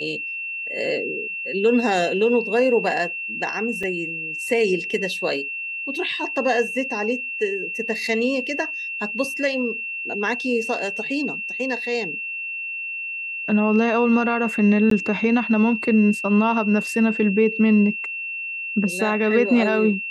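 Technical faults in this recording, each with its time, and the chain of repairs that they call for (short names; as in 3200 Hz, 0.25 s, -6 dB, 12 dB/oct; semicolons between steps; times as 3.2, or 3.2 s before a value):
tone 2700 Hz -27 dBFS
3.83 gap 4.5 ms
14.9–14.91 gap 13 ms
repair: notch 2700 Hz, Q 30; interpolate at 3.83, 4.5 ms; interpolate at 14.9, 13 ms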